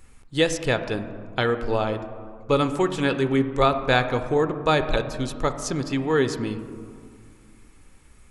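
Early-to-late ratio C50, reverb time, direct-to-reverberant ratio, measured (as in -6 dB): 10.5 dB, 2.3 s, 9.0 dB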